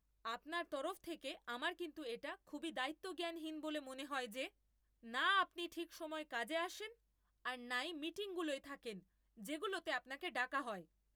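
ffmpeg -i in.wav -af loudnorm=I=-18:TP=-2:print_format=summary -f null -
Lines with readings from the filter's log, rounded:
Input Integrated:    -43.5 LUFS
Input True Peak:     -23.4 dBTP
Input LRA:             3.8 LU
Input Threshold:     -53.8 LUFS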